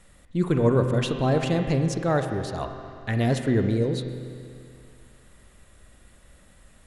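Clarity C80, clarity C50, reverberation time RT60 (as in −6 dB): 6.5 dB, 6.0 dB, 2.4 s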